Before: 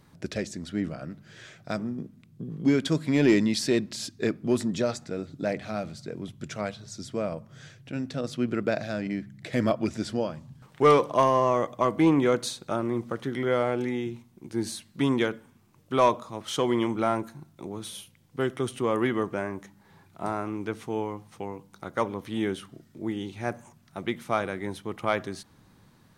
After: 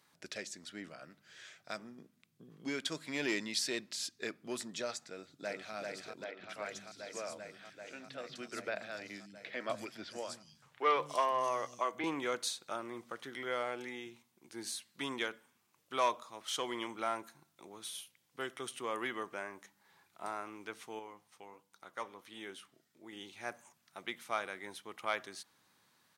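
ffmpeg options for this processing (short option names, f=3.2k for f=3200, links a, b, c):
-filter_complex "[0:a]asplit=2[a][b];[b]afade=t=in:st=5.04:d=0.01,afade=t=out:st=5.74:d=0.01,aecho=0:1:390|780|1170|1560|1950|2340|2730|3120|3510|3900|4290|4680:0.707946|0.601754|0.511491|0.434767|0.369552|0.314119|0.267001|0.226951|0.192909|0.163972|0.139376|0.11847[c];[a][c]amix=inputs=2:normalize=0,asettb=1/sr,asplit=3[d][e][f];[d]atrim=end=6.244[g];[e]atrim=start=6.24:end=12.04,asetpts=PTS-STARTPTS,afade=t=in:d=0.004:c=qsin,afade=t=out:st=5.796:d=0.004:c=qsin,acrossover=split=230|4300[h][i][j];[h]adelay=150[k];[j]adelay=250[l];[k][i][l]amix=inputs=3:normalize=0,atrim=end_sample=255780[m];[f]atrim=start=12.036[n];[g][m]acrossfade=d=0.004:c1=hsin:c2=qsin[o];[o][n]acrossfade=d=0.004:c1=qsin:c2=hsin,asettb=1/sr,asplit=3[p][q][r];[p]atrim=end=20.994[s];[q]atrim=start=20.99:end=23.13,asetpts=PTS-STARTPTS,afade=t=in:d=0.004:c=qsin,afade=t=out:st=2.136:d=0.004:c=qsin,flanger=delay=1.9:depth=6:regen=84:speed=1.4:shape=sinusoidal[t];[r]atrim=start=23.126[u];[s][t]acrossfade=d=0.004:c1=hsin:c2=qsin[v];[v][u]acrossfade=d=0.004:c1=qsin:c2=hsin,highpass=f=1.5k:p=1,volume=-3.5dB"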